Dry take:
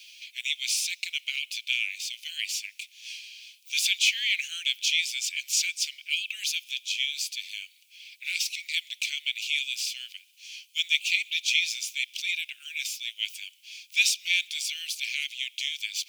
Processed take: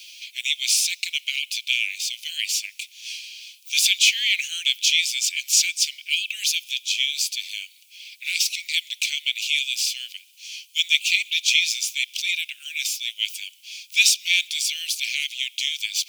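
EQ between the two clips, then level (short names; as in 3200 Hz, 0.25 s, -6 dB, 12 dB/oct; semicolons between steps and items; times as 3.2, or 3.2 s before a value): tilt shelf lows -8.5 dB, about 1300 Hz; 0.0 dB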